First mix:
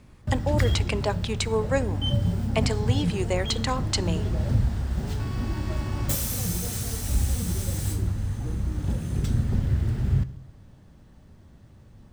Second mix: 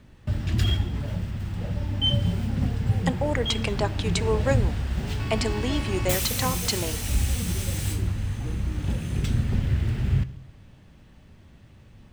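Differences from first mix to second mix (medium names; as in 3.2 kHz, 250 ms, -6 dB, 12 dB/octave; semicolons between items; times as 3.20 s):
speech: entry +2.75 s; background: add peaking EQ 2.6 kHz +9 dB 1.1 oct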